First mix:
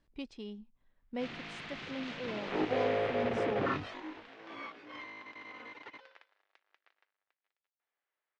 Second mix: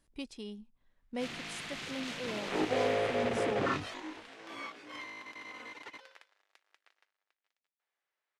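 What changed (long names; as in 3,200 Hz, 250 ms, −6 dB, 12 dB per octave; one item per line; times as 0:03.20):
speech: remove high-frequency loss of the air 140 metres
background: remove high-frequency loss of the air 190 metres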